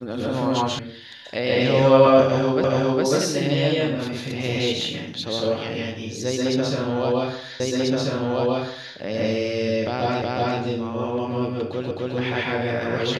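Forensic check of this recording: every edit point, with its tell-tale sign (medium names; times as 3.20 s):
0.79 s: sound stops dead
2.64 s: repeat of the last 0.41 s
7.60 s: repeat of the last 1.34 s
10.22 s: repeat of the last 0.37 s
11.91 s: repeat of the last 0.26 s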